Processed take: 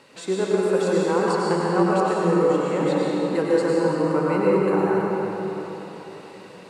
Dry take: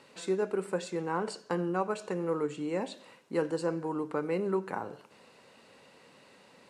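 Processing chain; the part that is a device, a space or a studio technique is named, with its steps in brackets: cathedral (reverberation RT60 4.1 s, pre-delay 89 ms, DRR -5.5 dB); trim +5 dB

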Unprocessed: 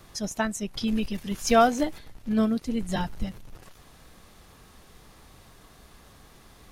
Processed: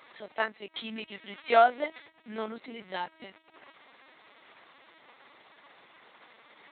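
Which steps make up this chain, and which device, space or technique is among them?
talking toy (LPC vocoder at 8 kHz pitch kept; high-pass 500 Hz 12 dB/octave; peaking EQ 2.1 kHz +6.5 dB 0.31 oct)

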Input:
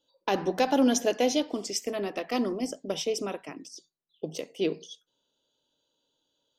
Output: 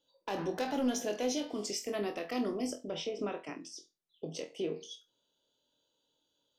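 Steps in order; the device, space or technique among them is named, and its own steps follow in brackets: 2.79–4.76 s: low-pass that closes with the level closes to 2 kHz, closed at -25.5 dBFS; clipper into limiter (hard clipper -17.5 dBFS, distortion -21 dB; peak limiter -24.5 dBFS, peak gain reduction 7 dB); flutter echo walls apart 4.1 m, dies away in 0.22 s; trim -3 dB

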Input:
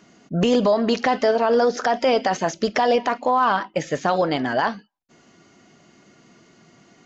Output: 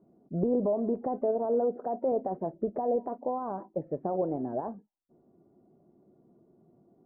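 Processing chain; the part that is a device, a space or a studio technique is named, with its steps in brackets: 1.45–2.12 s: high-pass 98 Hz; under water (low-pass 730 Hz 24 dB/octave; peaking EQ 370 Hz +5.5 dB 0.23 oct); trim -9 dB

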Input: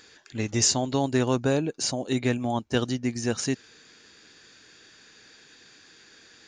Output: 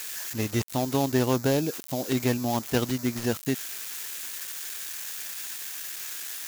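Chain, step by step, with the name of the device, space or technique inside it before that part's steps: budget class-D amplifier (dead-time distortion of 0.16 ms; zero-crossing glitches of -19.5 dBFS)

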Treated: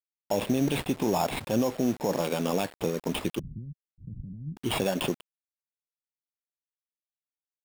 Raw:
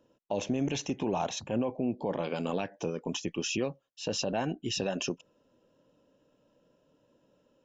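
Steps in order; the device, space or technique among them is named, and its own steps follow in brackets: early 8-bit sampler (sample-rate reducer 6.1 kHz, jitter 0%; bit crusher 8-bit); 3.39–4.57 s: inverse Chebyshev low-pass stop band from 930 Hz, stop band 80 dB; trim +4.5 dB

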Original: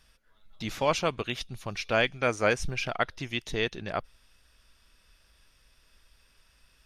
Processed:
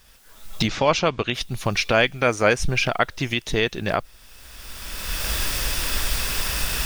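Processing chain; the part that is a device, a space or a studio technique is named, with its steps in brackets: cheap recorder with automatic gain (white noise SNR 34 dB; recorder AGC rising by 23 dB/s); 0.68–1.34 s: low-pass 6.5 kHz 24 dB/octave; trim +6.5 dB

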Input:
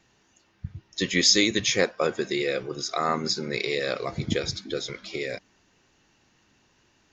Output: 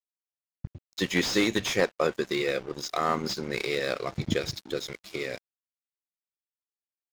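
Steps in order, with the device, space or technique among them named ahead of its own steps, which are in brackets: early transistor amplifier (crossover distortion -41 dBFS; slew-rate limiter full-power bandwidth 170 Hz)

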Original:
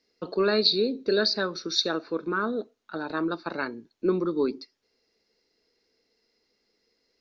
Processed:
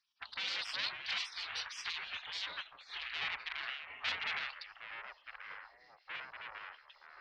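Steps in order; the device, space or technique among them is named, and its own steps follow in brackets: 3.03–4.39 s: graphic EQ 125/250/500/1000/2000/4000 Hz -3/+8/+10/-8/-5/-11 dB; vibe pedal into a guitar amplifier (lamp-driven phase shifter 2.7 Hz; valve stage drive 34 dB, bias 0.65; cabinet simulation 83–4100 Hz, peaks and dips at 170 Hz +4 dB, 540 Hz +6 dB, 1.1 kHz -5 dB); ever faster or slower copies 375 ms, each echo -6 st, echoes 2, each echo -6 dB; spectral gate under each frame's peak -25 dB weak; tilt shelf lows -9.5 dB, about 920 Hz; trim +7.5 dB

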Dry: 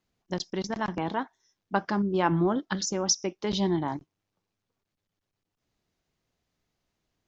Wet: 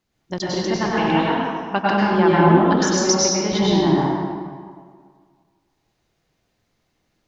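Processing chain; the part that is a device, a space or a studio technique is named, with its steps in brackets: stairwell (reverberation RT60 1.8 s, pre-delay 92 ms, DRR -6.5 dB); 0.97–2.16 s: peaking EQ 2.7 kHz +11 dB 0.47 oct; trim +3.5 dB

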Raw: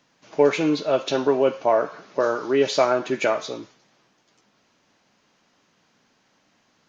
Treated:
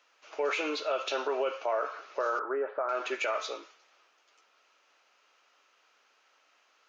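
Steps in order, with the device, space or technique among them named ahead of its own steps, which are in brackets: laptop speaker (high-pass 420 Hz 24 dB/octave; peaking EQ 1.3 kHz +9.5 dB 0.29 oct; peaking EQ 2.6 kHz +7 dB 0.56 oct; peak limiter -16.5 dBFS, peak gain reduction 11.5 dB); 2.39–2.89 s: Chebyshev low-pass 1.6 kHz, order 4; trim -5 dB

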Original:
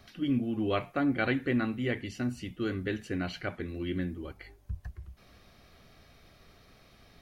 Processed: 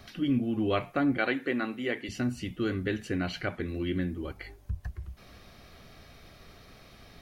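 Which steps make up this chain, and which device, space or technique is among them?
parallel compression (in parallel at -1 dB: compression, threshold -39 dBFS, peak gain reduction 14.5 dB); 1.18–2.09 s: on the sum: high-pass 290 Hz 12 dB/octave

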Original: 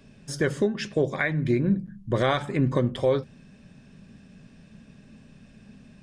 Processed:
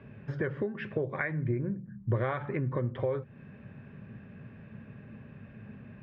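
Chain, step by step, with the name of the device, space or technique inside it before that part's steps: 1.44–2.08 s: distance through air 420 m; bass amplifier (compression 4:1, threshold -34 dBFS, peak gain reduction 14 dB; cabinet simulation 80–2200 Hz, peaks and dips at 110 Hz +7 dB, 180 Hz -6 dB, 270 Hz -6 dB, 700 Hz -4 dB); trim +5 dB

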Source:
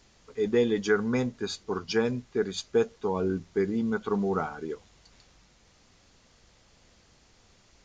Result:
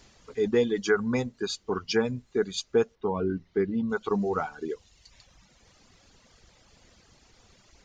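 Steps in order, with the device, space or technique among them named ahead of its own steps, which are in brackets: reverb removal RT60 1.1 s; 2.95–3.90 s: distance through air 250 m; parallel compression (in parallel at -3 dB: compression, threshold -36 dBFS, peak gain reduction 16 dB)

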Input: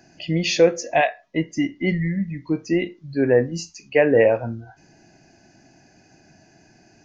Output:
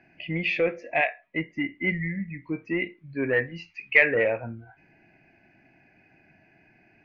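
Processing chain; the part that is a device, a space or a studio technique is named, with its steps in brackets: 3.33–4.15 s: graphic EQ 250/2000/4000 Hz -6/+9/+6 dB; overdriven synthesiser ladder filter (saturation -8.5 dBFS, distortion -16 dB; four-pole ladder low-pass 2.5 kHz, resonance 70%); trim +4 dB

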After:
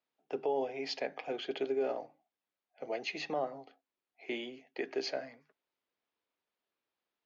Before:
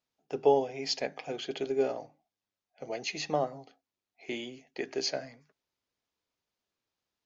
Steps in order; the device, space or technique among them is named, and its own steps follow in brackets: DJ mixer with the lows and highs turned down (three-band isolator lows -14 dB, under 220 Hz, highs -18 dB, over 4 kHz; peak limiter -24 dBFS, peak gain reduction 10.5 dB)

